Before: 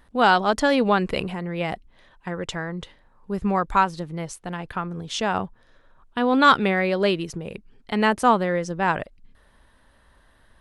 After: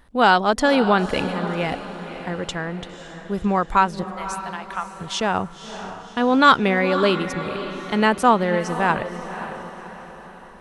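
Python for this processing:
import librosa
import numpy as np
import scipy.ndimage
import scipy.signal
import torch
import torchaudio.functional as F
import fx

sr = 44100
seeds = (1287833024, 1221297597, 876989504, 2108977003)

y = fx.highpass(x, sr, hz=680.0, slope=24, at=(4.03, 5.01))
y = fx.echo_diffused(y, sr, ms=547, feedback_pct=48, wet_db=-11)
y = F.gain(torch.from_numpy(y), 2.0).numpy()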